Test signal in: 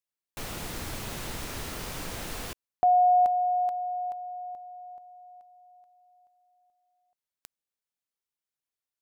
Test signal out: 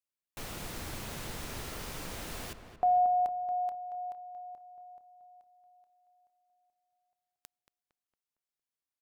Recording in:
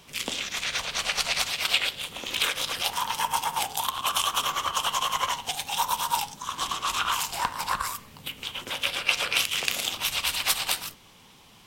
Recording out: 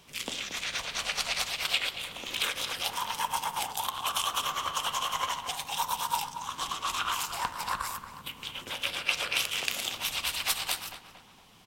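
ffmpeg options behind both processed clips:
-filter_complex "[0:a]asplit=2[s0][s1];[s1]adelay=229,lowpass=f=2200:p=1,volume=0.355,asplit=2[s2][s3];[s3]adelay=229,lowpass=f=2200:p=1,volume=0.49,asplit=2[s4][s5];[s5]adelay=229,lowpass=f=2200:p=1,volume=0.49,asplit=2[s6][s7];[s7]adelay=229,lowpass=f=2200:p=1,volume=0.49,asplit=2[s8][s9];[s9]adelay=229,lowpass=f=2200:p=1,volume=0.49,asplit=2[s10][s11];[s11]adelay=229,lowpass=f=2200:p=1,volume=0.49[s12];[s0][s2][s4][s6][s8][s10][s12]amix=inputs=7:normalize=0,volume=0.596"

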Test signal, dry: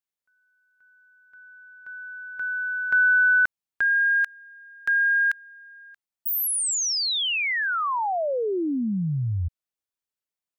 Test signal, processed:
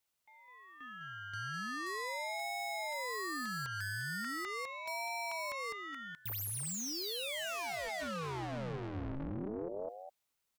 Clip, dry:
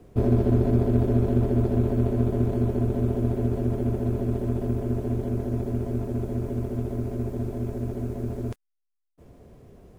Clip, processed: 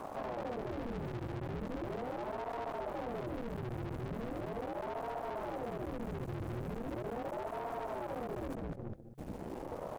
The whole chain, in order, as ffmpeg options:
-filter_complex "[0:a]asuperstop=centerf=1000:order=8:qfactor=3.6,asplit=2[s0][s1];[s1]adelay=204,lowpass=f=2500:p=1,volume=0.562,asplit=2[s2][s3];[s3]adelay=204,lowpass=f=2500:p=1,volume=0.21,asplit=2[s4][s5];[s5]adelay=204,lowpass=f=2500:p=1,volume=0.21[s6];[s2][s4][s6]amix=inputs=3:normalize=0[s7];[s0][s7]amix=inputs=2:normalize=0,acompressor=threshold=0.0112:ratio=3:attack=7.2:release=184:knee=1:detection=rms,aeval=exprs='(tanh(398*val(0)+0.7)-tanh(0.7))/398':c=same,aeval=exprs='val(0)*sin(2*PI*400*n/s+400*0.75/0.39*sin(2*PI*0.39*n/s))':c=same,volume=5.62"

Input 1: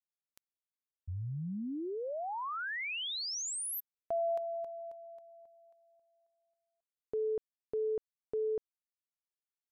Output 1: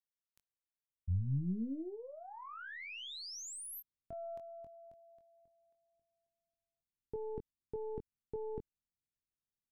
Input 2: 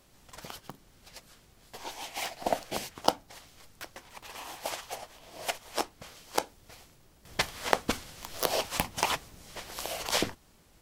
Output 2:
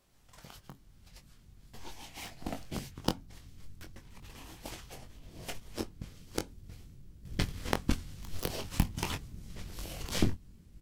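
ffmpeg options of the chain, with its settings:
-filter_complex "[0:a]asubboost=boost=11.5:cutoff=220,aeval=exprs='0.841*(cos(1*acos(clip(val(0)/0.841,-1,1)))-cos(1*PI/2))+0.0841*(cos(3*acos(clip(val(0)/0.841,-1,1)))-cos(3*PI/2))+0.00596*(cos(7*acos(clip(val(0)/0.841,-1,1)))-cos(7*PI/2))+0.0596*(cos(8*acos(clip(val(0)/0.841,-1,1)))-cos(8*PI/2))':c=same,asplit=2[s0][s1];[s1]adelay=22,volume=0.447[s2];[s0][s2]amix=inputs=2:normalize=0,volume=0.531"

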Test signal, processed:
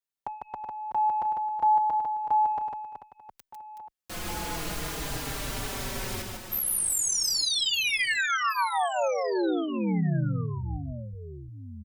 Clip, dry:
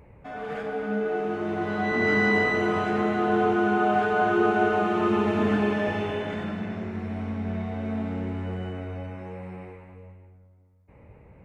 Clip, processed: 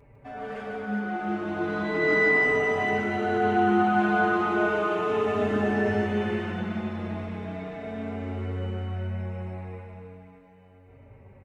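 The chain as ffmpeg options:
-filter_complex "[0:a]acontrast=26,aecho=1:1:150|375|712.5|1219|1978:0.631|0.398|0.251|0.158|0.1,asplit=2[s0][s1];[s1]adelay=4.6,afreqshift=-0.37[s2];[s0][s2]amix=inputs=2:normalize=1,volume=0.562"

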